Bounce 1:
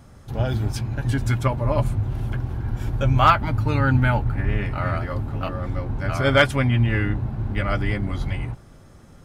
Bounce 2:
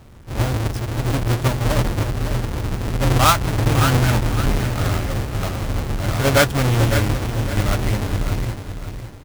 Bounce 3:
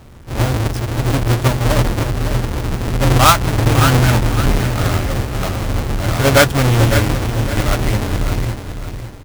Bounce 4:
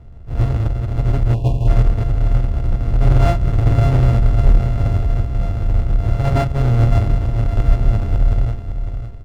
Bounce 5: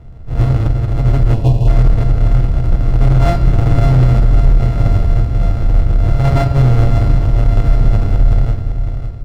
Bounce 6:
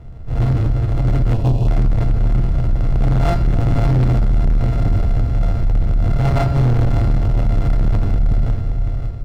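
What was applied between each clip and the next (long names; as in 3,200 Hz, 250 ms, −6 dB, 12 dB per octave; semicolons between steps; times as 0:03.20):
each half-wave held at its own peak; repeating echo 557 ms, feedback 34%, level −9 dB; level −2.5 dB
mains-hum notches 50/100/150/200 Hz; level +4.5 dB
samples sorted by size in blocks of 64 samples; time-frequency box erased 0:01.34–0:01.68, 1,100–2,400 Hz; RIAA equalisation playback; level −12 dB
on a send at −8 dB: convolution reverb RT60 1.3 s, pre-delay 6 ms; on the sum: boost into a limiter +5 dB; level −1 dB
soft clipping −10 dBFS, distortion −12 dB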